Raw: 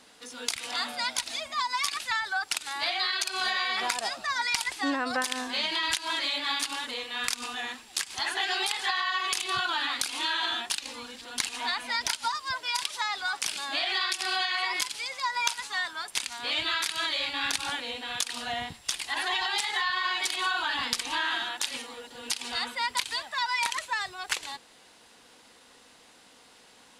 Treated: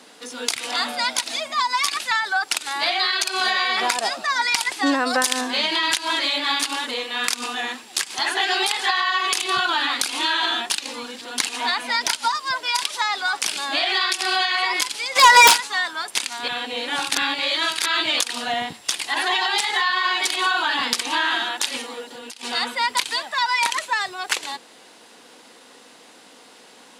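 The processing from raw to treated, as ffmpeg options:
ffmpeg -i in.wav -filter_complex "[0:a]asettb=1/sr,asplit=3[link_01][link_02][link_03];[link_01]atrim=end=4.864[link_04];[link_02]atrim=start=4.86:end=5.41,asetpts=PTS-STARTPTS,afade=type=in:duration=0.004:curve=qsin,afade=type=out:start_time=0.546:duration=0.004:curve=qsin,bass=frequency=250:gain=-3,treble=frequency=4000:gain=6[link_05];[link_03]atrim=start=5.406[link_06];[link_04][link_05]acrossfade=duration=0.004:curve1=hsin:curve2=qsin[link_07];[link_07][link_06]acrossfade=duration=0.004:curve1=qsin:curve2=hsin,asplit=3[link_08][link_09][link_10];[link_08]afade=type=out:start_time=15.15:duration=0.02[link_11];[link_09]aeval=exprs='0.224*sin(PI/2*4.47*val(0)/0.224)':channel_layout=same,afade=type=in:start_time=15.15:duration=0.02,afade=type=out:start_time=15.56:duration=0.02[link_12];[link_10]afade=type=in:start_time=15.56:duration=0.02[link_13];[link_11][link_12][link_13]amix=inputs=3:normalize=0,asettb=1/sr,asplit=3[link_14][link_15][link_16];[link_14]atrim=end=22.034[link_17];[link_15]atrim=start=22.03:end=22.43,asetpts=PTS-STARTPTS,afade=type=in:duration=0.004:curve=qsin,afade=type=out:start_time=0.396:duration=0.004:curve=qsin,acompressor=threshold=-42dB:ratio=6:attack=3.2:release=140:knee=1:detection=peak[link_18];[link_16]atrim=start=22.426[link_19];[link_17][link_18]acrossfade=duration=0.004:curve1=hsin:curve2=qsin[link_20];[link_20][link_19]acrossfade=duration=0.004:curve1=qsin:curve2=hsin,asplit=3[link_21][link_22][link_23];[link_21]atrim=end=16.482[link_24];[link_22]atrim=start=16.478:end=18.202,asetpts=PTS-STARTPTS,areverse[link_25];[link_23]atrim=start=18.198[link_26];[link_24][link_25]acrossfade=duration=0.004:curve1=hsin:curve2=hsin[link_27];[link_27][link_26]acrossfade=duration=0.004:curve1=hsin:curve2=hsin,highpass=280,lowshelf=frequency=410:gain=9,acontrast=80" out.wav

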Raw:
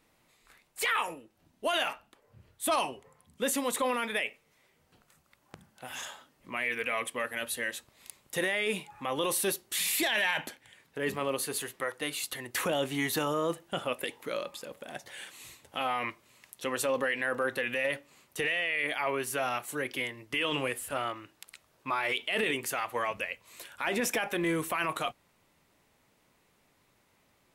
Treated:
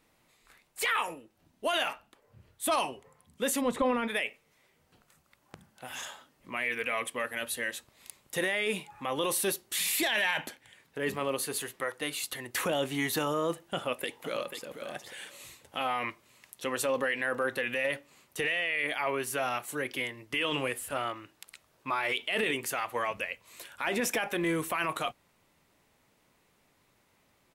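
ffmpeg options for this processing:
ffmpeg -i in.wav -filter_complex "[0:a]asplit=3[link_01][link_02][link_03];[link_01]afade=type=out:start_time=3.6:duration=0.02[link_04];[link_02]aemphasis=mode=reproduction:type=riaa,afade=type=in:start_time=3.6:duration=0.02,afade=type=out:start_time=4.07:duration=0.02[link_05];[link_03]afade=type=in:start_time=4.07:duration=0.02[link_06];[link_04][link_05][link_06]amix=inputs=3:normalize=0,asplit=2[link_07][link_08];[link_08]afade=type=in:start_time=13.75:duration=0.01,afade=type=out:start_time=14.64:duration=0.01,aecho=0:1:490|980:0.375837|0.0563756[link_09];[link_07][link_09]amix=inputs=2:normalize=0" out.wav

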